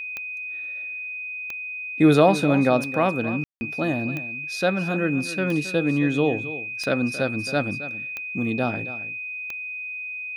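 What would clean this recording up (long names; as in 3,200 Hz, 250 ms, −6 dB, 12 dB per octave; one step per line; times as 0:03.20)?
click removal
notch filter 2,500 Hz, Q 30
ambience match 0:03.44–0:03.61
echo removal 271 ms −14 dB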